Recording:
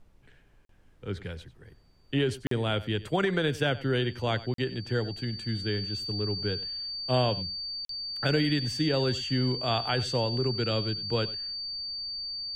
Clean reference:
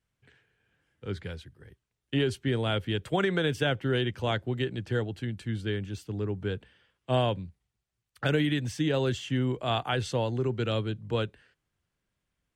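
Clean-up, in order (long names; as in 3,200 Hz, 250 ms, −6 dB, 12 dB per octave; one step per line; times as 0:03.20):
notch filter 4,600 Hz, Q 30
repair the gap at 0:00.65/0:02.47/0:04.54/0:07.85, 43 ms
downward expander −48 dBFS, range −21 dB
echo removal 95 ms −17.5 dB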